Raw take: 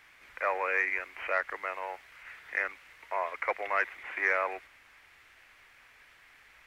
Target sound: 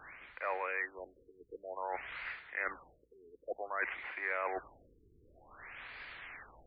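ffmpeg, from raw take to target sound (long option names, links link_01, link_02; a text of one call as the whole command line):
ffmpeg -i in.wav -af "areverse,acompressor=threshold=-46dB:ratio=4,areverse,afftfilt=real='re*lt(b*sr/1024,440*pow(5000/440,0.5+0.5*sin(2*PI*0.54*pts/sr)))':imag='im*lt(b*sr/1024,440*pow(5000/440,0.5+0.5*sin(2*PI*0.54*pts/sr)))':win_size=1024:overlap=0.75,volume=9.5dB" out.wav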